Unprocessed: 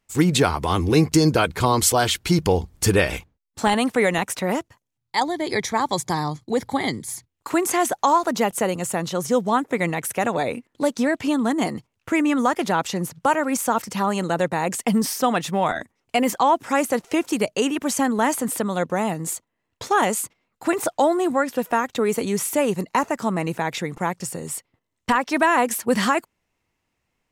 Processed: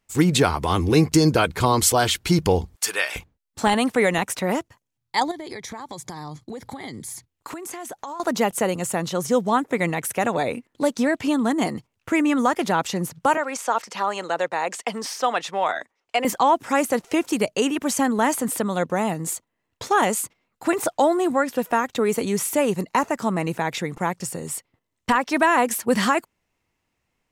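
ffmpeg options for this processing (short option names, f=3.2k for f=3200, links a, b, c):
-filter_complex "[0:a]asettb=1/sr,asplit=3[a][b][c];[a]atrim=end=2.764[d];[b]atrim=start=2.76:end=3.16,asetpts=PTS-STARTPTS,afade=t=in:d=0.004:c=qsin,afade=t=out:st=0.396:d=0.004:c=qsin,highpass=1k[e];[c]atrim=start=3.156[f];[d][e]acrossfade=d=0.004:c1=hsin:c2=qsin[g];[g][f]acrossfade=d=0.004:c1=qsin:c2=hsin,asettb=1/sr,asplit=3[h][i][j];[h]atrim=end=5.314[k];[i]atrim=start=5.31:end=8.2,asetpts=PTS-STARTPTS,afade=t=in:d=0.004:c=qsin,afade=t=out:st=2.886:d=0.004:c=qsin,acompressor=threshold=-30dB:ratio=16:attack=3.2:release=140:knee=1:detection=peak[l];[j]atrim=start=8.196[m];[k][l]acrossfade=d=0.004:c1=hsin:c2=qsin[n];[n][m]acrossfade=d=0.004:c1=qsin:c2=hsin,asettb=1/sr,asplit=3[o][p][q];[o]atrim=end=13.374[r];[p]atrim=start=13.37:end=16.25,asetpts=PTS-STARTPTS,afade=t=in:d=0.004:c=qsin,afade=t=out:st=2.876:d=0.004:c=qsin,acrossover=split=400 7400:gain=0.112 1 0.158[s][t][u];[s][t][u]amix=inputs=3:normalize=0[v];[q]atrim=start=16.246[w];[r][v]acrossfade=d=0.004:c1=hsin:c2=qsin[x];[x][w]acrossfade=d=0.004:c1=qsin:c2=hsin"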